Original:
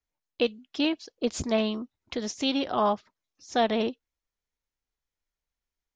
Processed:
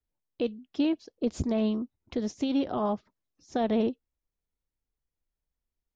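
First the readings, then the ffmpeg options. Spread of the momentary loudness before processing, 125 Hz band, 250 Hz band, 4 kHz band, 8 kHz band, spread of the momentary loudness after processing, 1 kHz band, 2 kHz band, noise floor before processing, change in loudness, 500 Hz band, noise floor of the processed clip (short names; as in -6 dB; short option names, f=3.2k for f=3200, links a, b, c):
8 LU, +3.0 dB, +1.5 dB, -11.0 dB, -9.5 dB, 8 LU, -6.5 dB, -10.0 dB, under -85 dBFS, -1.5 dB, -3.0 dB, under -85 dBFS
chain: -af "alimiter=limit=-18.5dB:level=0:latency=1:release=31,tiltshelf=f=700:g=7,volume=-2.5dB"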